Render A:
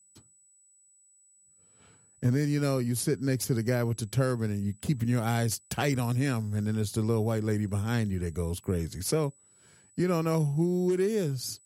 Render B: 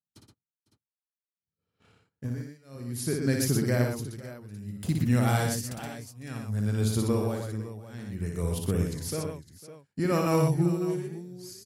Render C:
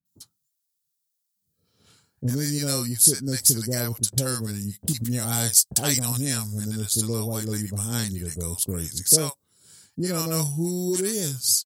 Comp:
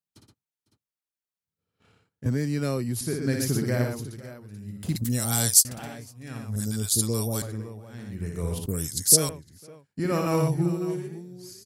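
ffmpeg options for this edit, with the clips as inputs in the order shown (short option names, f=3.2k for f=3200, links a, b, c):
-filter_complex "[2:a]asplit=3[a][b][c];[1:a]asplit=5[d][e][f][g][h];[d]atrim=end=2.262[i];[0:a]atrim=start=2.258:end=3.012[j];[e]atrim=start=3.008:end=4.962[k];[a]atrim=start=4.958:end=5.652[l];[f]atrim=start=5.648:end=6.562[m];[b]atrim=start=6.558:end=7.422[n];[g]atrim=start=7.418:end=8.662[o];[c]atrim=start=8.658:end=9.292[p];[h]atrim=start=9.288[q];[i][j]acrossfade=d=0.004:c1=hsin:c2=hsin[r];[r][k]acrossfade=d=0.004:c1=hsin:c2=hsin[s];[s][l]acrossfade=d=0.004:c1=hsin:c2=hsin[t];[t][m]acrossfade=d=0.004:c1=hsin:c2=hsin[u];[u][n]acrossfade=d=0.004:c1=hsin:c2=hsin[v];[v][o]acrossfade=d=0.004:c1=hsin:c2=hsin[w];[w][p]acrossfade=d=0.004:c1=hsin:c2=hsin[x];[x][q]acrossfade=d=0.004:c1=hsin:c2=hsin"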